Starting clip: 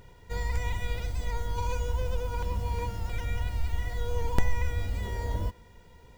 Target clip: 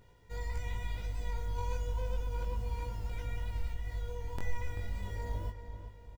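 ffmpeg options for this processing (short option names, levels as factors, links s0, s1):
-filter_complex "[0:a]asplit=3[s0][s1][s2];[s0]afade=t=out:st=3.71:d=0.02[s3];[s1]acompressor=threshold=0.0447:ratio=6,afade=t=in:st=3.71:d=0.02,afade=t=out:st=4.4:d=0.02[s4];[s2]afade=t=in:st=4.4:d=0.02[s5];[s3][s4][s5]amix=inputs=3:normalize=0,flanger=delay=18:depth=2.8:speed=0.34,asplit=2[s6][s7];[s7]adelay=388,lowpass=f=2800:p=1,volume=0.355,asplit=2[s8][s9];[s9]adelay=388,lowpass=f=2800:p=1,volume=0.44,asplit=2[s10][s11];[s11]adelay=388,lowpass=f=2800:p=1,volume=0.44,asplit=2[s12][s13];[s13]adelay=388,lowpass=f=2800:p=1,volume=0.44,asplit=2[s14][s15];[s15]adelay=388,lowpass=f=2800:p=1,volume=0.44[s16];[s6][s8][s10][s12][s14][s16]amix=inputs=6:normalize=0,volume=0.531"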